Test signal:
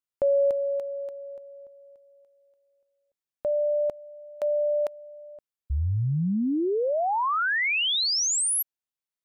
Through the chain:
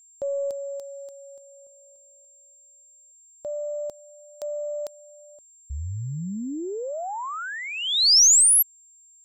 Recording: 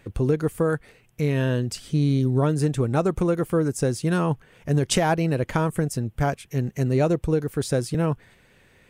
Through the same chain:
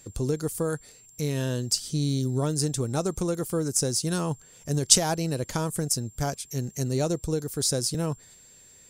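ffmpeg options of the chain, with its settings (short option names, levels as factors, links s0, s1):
-af "highshelf=f=3500:t=q:w=1.5:g=13,aeval=exprs='1.68*(cos(1*acos(clip(val(0)/1.68,-1,1)))-cos(1*PI/2))+0.015*(cos(8*acos(clip(val(0)/1.68,-1,1)))-cos(8*PI/2))':c=same,aeval=exprs='val(0)+0.00501*sin(2*PI*7400*n/s)':c=same,volume=0.531"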